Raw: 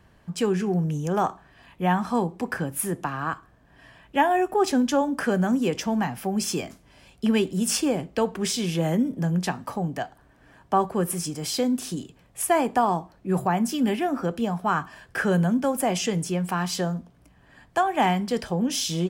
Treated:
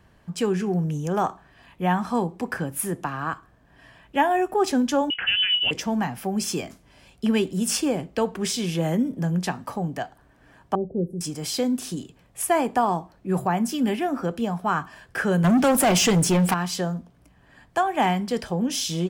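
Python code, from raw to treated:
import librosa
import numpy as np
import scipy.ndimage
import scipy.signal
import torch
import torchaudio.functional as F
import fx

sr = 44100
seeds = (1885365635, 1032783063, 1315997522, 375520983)

y = fx.freq_invert(x, sr, carrier_hz=3200, at=(5.1, 5.71))
y = fx.cheby2_lowpass(y, sr, hz=1000.0, order=4, stop_db=40, at=(10.75, 11.21))
y = fx.leveller(y, sr, passes=3, at=(15.44, 16.54))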